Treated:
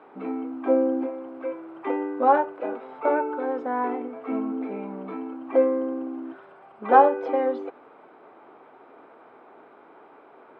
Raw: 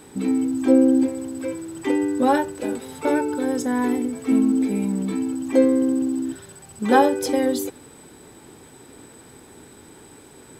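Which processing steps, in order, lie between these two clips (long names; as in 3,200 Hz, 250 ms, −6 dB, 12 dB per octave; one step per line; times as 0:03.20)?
loudspeaker in its box 480–2,100 Hz, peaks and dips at 680 Hz +8 dB, 1,200 Hz +6 dB, 1,800 Hz −8 dB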